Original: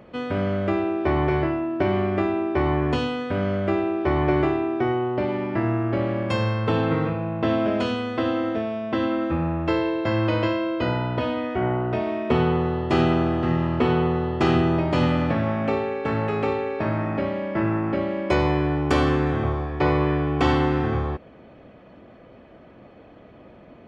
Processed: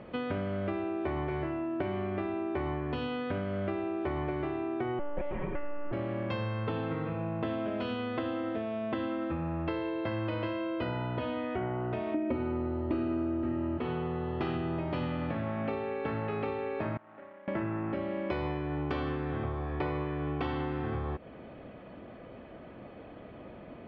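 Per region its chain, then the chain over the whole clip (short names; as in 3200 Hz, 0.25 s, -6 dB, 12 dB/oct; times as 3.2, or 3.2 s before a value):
4.99–5.92 air absorption 150 m + monotone LPC vocoder at 8 kHz 290 Hz + comb 5.4 ms, depth 79%
12.14–13.78 tone controls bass +7 dB, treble -9 dB + comb 3.2 ms, depth 78% + small resonant body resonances 300/530/2300 Hz, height 16 dB, ringing for 0.1 s
16.97–17.48 median filter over 25 samples + LPF 1800 Hz 24 dB/oct + differentiator
whole clip: LPF 4000 Hz 24 dB/oct; compressor, threshold -31 dBFS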